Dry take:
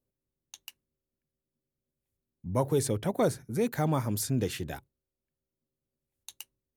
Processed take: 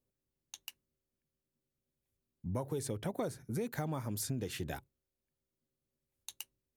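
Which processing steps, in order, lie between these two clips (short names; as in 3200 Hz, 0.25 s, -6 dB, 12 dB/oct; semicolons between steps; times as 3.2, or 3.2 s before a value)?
compressor 10:1, threshold -32 dBFS, peak gain reduction 11.5 dB; gain -1 dB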